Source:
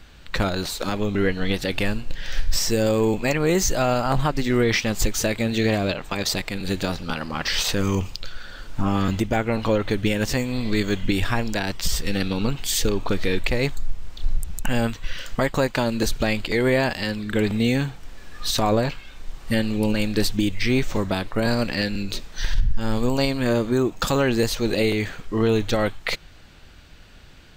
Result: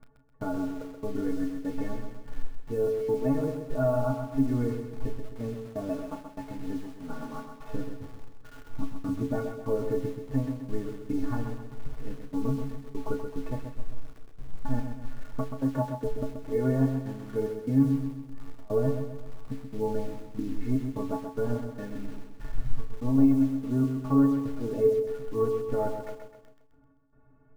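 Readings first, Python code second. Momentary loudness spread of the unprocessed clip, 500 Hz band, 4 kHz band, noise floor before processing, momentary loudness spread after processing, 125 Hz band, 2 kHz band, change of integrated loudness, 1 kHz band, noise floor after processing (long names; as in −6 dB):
9 LU, −6.5 dB, below −25 dB, −44 dBFS, 17 LU, −7.0 dB, −21.5 dB, −7.0 dB, −11.0 dB, −55 dBFS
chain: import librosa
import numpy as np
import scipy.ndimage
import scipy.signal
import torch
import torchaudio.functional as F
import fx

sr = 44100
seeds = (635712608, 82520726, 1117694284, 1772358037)

p1 = scipy.signal.sosfilt(scipy.signal.butter(4, 1200.0, 'lowpass', fs=sr, output='sos'), x)
p2 = fx.peak_eq(p1, sr, hz=250.0, db=7.0, octaves=0.64)
p3 = fx.step_gate(p2, sr, bpm=73, pattern='x.xx.xx.xx.x.', floor_db=-24.0, edge_ms=4.5)
p4 = fx.stiff_resonator(p3, sr, f0_hz=130.0, decay_s=0.38, stiffness=0.03)
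p5 = fx.quant_dither(p4, sr, seeds[0], bits=8, dither='none')
p6 = p4 + F.gain(torch.from_numpy(p5), -5.0).numpy()
p7 = fx.doubler(p6, sr, ms=34.0, db=-10.5)
y = p7 + fx.echo_feedback(p7, sr, ms=130, feedback_pct=46, wet_db=-7, dry=0)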